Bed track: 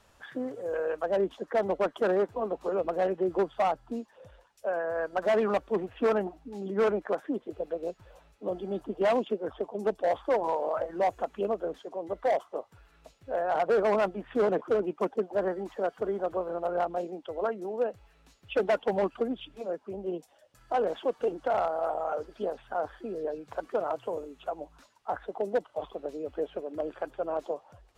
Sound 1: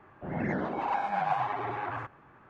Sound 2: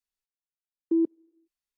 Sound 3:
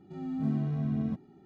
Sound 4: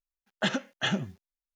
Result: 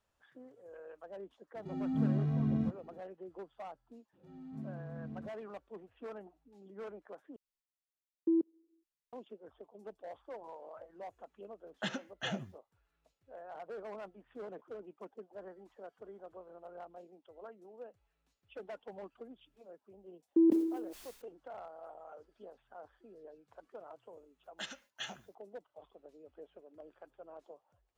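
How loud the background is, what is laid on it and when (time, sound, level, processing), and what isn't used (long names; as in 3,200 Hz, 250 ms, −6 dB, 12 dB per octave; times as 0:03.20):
bed track −20 dB
0:01.55: mix in 3 −1 dB
0:04.13: mix in 3 −14.5 dB + highs frequency-modulated by the lows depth 0.11 ms
0:07.36: overwrite with 2 −6 dB
0:11.40: mix in 4 −10 dB
0:19.45: mix in 2 −2 dB + level that may fall only so fast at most 55 dB per second
0:24.17: mix in 4 −17.5 dB + spectral tilt +3.5 dB per octave
not used: 1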